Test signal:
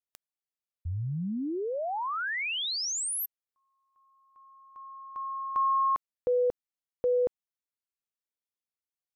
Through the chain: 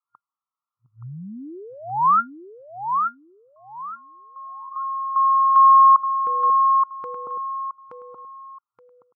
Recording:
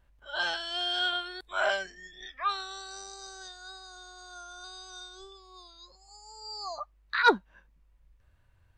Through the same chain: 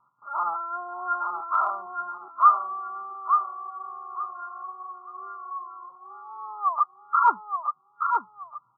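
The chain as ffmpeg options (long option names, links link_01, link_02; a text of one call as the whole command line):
ffmpeg -i in.wav -af "crystalizer=i=6.5:c=0,afftfilt=real='re*between(b*sr/4096,110,1400)':imag='im*between(b*sr/4096,110,1400)':win_size=4096:overlap=0.75,acompressor=threshold=-28dB:ratio=2:attack=0.38:release=698:knee=1:detection=rms,lowshelf=frequency=790:width_type=q:width=3:gain=-10.5,aecho=1:1:874|1748|2622:0.562|0.146|0.038,volume=8dB" out.wav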